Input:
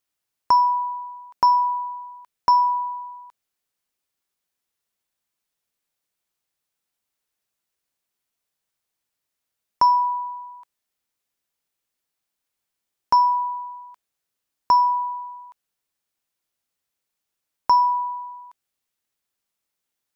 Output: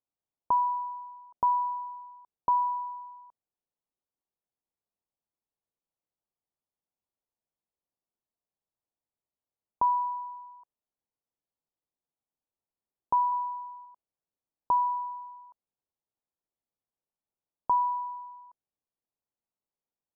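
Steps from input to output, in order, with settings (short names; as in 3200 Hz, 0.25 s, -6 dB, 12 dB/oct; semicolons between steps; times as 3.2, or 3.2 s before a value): LPF 1000 Hz 24 dB/oct; 13.31–13.85 doubler 13 ms -5 dB; gain -6 dB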